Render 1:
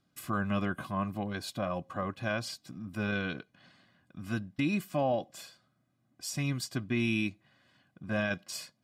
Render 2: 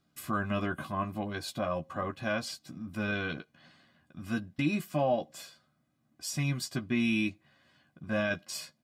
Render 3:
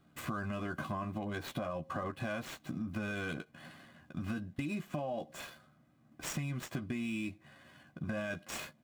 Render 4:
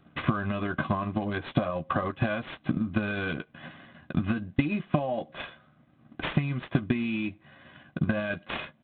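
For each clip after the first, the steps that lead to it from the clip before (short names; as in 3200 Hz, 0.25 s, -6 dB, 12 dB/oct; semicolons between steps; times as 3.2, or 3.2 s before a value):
doubler 13 ms -6 dB
median filter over 9 samples; limiter -27.5 dBFS, peak gain reduction 9 dB; compressor, threshold -43 dBFS, peak gain reduction 11 dB; gain +8 dB
transient shaper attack +8 dB, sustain -3 dB; gain +7 dB; G.726 32 kbps 8000 Hz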